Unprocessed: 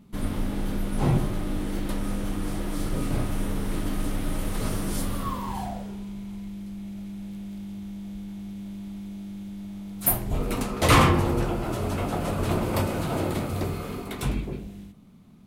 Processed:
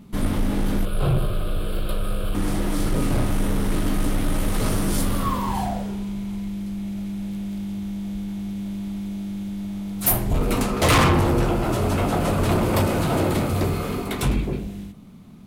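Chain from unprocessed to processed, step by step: 0.85–2.35 s: static phaser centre 1.3 kHz, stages 8; saturation -20.5 dBFS, distortion -11 dB; trim +7.5 dB

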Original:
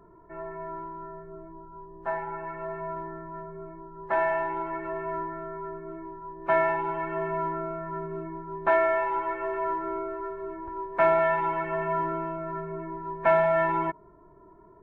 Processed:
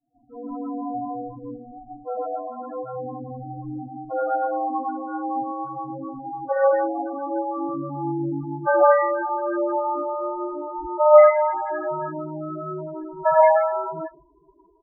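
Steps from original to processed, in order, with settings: pitch bend over the whole clip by -5.5 st ending unshifted; in parallel at +1.5 dB: level held to a coarse grid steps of 22 dB; on the sum: bass shelf 74 Hz -4.5 dB; speakerphone echo 90 ms, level -25 dB; gated-style reverb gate 190 ms rising, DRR -5 dB; expander -40 dBFS; loudest bins only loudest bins 8; dynamic bell 220 Hz, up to +3 dB, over -43 dBFS, Q 3; trim -2 dB

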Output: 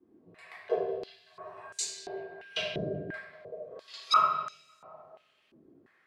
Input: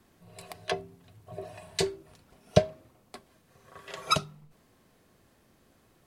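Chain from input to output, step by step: repeats whose band climbs or falls 190 ms, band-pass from 3.7 kHz, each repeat -0.7 oct, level -11 dB; 1.62–3.15 s: whistle 1.6 kHz -49 dBFS; reverberation RT60 1.5 s, pre-delay 3 ms, DRR -8 dB; step-sequenced band-pass 2.9 Hz 310–6900 Hz

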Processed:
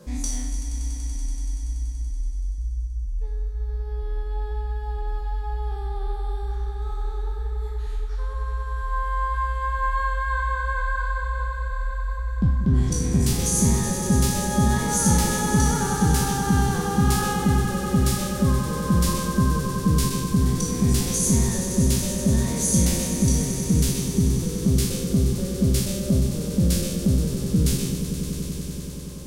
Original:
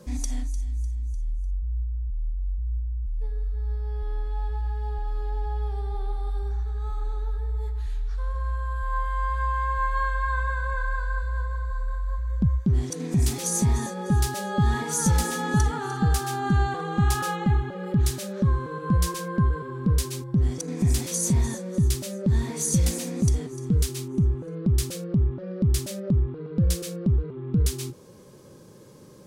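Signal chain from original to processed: spectral sustain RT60 0.86 s; echo with a slow build-up 95 ms, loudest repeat 5, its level -13 dB

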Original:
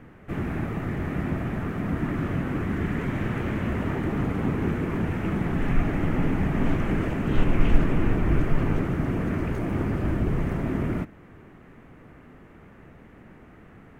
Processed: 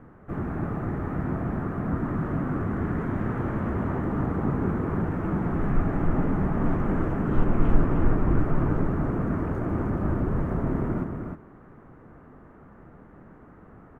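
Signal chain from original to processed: resonant high shelf 1.8 kHz -11 dB, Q 1.5; on a send: delay 307 ms -5.5 dB; on the sum: trim -1.5 dB

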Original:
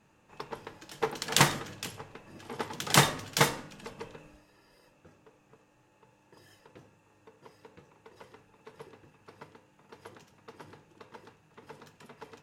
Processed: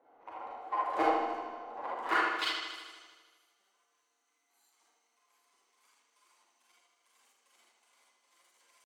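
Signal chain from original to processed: dead-time distortion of 0.054 ms; high-pass 70 Hz 12 dB/octave; tilt shelf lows +8 dB, about 840 Hz; tempo 0.6×; band-pass sweep 330 Hz -> 3.7 kHz, 4.57–6.35 s; transient shaper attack -7 dB, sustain -2 dB; bucket-brigade echo 182 ms, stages 4096, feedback 69%, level -6 dB; reverberation RT60 0.70 s, pre-delay 55 ms, DRR -3 dB; speed mistake 33 rpm record played at 78 rpm; trim +1 dB

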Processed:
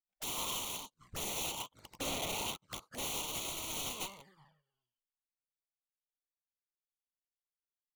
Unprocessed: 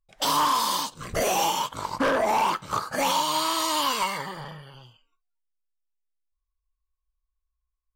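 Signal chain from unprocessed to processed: integer overflow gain 21.5 dB; touch-sensitive flanger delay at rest 4.6 ms, full sweep at -27.5 dBFS; upward expansion 2.5:1, over -49 dBFS; trim -7 dB

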